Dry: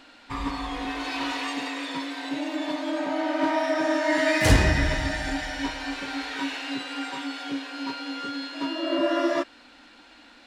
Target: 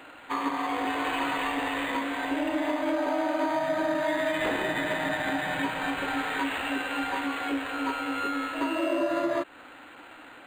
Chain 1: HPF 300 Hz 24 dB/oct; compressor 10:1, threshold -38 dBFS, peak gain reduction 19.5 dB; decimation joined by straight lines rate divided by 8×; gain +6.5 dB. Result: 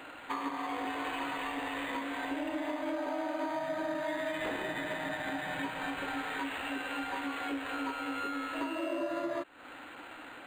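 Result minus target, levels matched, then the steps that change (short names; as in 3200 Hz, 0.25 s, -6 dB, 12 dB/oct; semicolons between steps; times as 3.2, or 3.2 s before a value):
compressor: peak gain reduction +7.5 dB
change: compressor 10:1, threshold -29.5 dBFS, peak gain reduction 12 dB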